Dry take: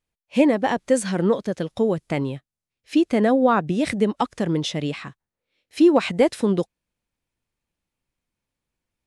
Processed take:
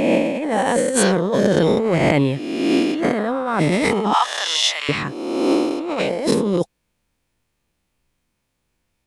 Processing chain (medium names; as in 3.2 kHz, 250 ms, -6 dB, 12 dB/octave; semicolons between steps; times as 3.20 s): reverse spectral sustain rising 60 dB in 1.45 s; 4.13–4.89 s: high-pass 930 Hz 24 dB/octave; compressor with a negative ratio -22 dBFS, ratio -1; trim +3.5 dB